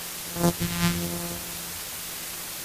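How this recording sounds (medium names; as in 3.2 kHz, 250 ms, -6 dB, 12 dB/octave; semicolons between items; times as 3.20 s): a buzz of ramps at a fixed pitch in blocks of 256 samples; phasing stages 2, 0.94 Hz, lowest notch 440–4500 Hz; a quantiser's noise floor 6-bit, dither triangular; MP3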